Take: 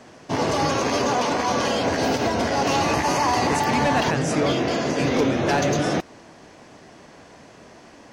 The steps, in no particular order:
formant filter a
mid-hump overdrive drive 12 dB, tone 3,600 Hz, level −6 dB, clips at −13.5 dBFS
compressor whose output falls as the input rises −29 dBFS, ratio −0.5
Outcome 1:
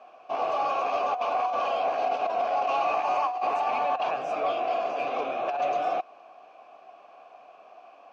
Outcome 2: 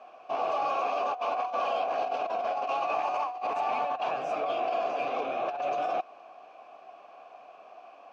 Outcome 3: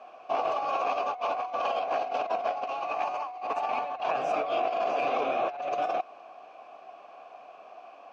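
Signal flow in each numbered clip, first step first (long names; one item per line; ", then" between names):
formant filter, then compressor whose output falls as the input rises, then mid-hump overdrive
mid-hump overdrive, then formant filter, then compressor whose output falls as the input rises
formant filter, then mid-hump overdrive, then compressor whose output falls as the input rises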